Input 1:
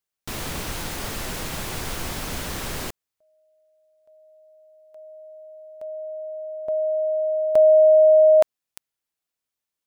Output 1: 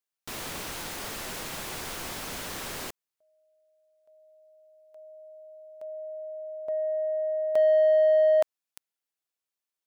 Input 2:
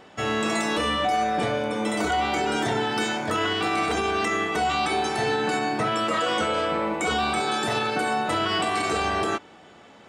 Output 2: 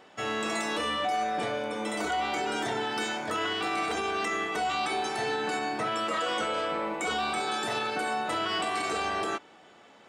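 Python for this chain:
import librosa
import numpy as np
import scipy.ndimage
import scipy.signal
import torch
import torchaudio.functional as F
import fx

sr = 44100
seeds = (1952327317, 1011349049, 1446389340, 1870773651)

p1 = fx.low_shelf(x, sr, hz=170.0, db=-11.5)
p2 = 10.0 ** (-19.0 / 20.0) * np.tanh(p1 / 10.0 ** (-19.0 / 20.0))
p3 = p1 + (p2 * librosa.db_to_amplitude(-5.0))
y = p3 * librosa.db_to_amplitude(-8.0)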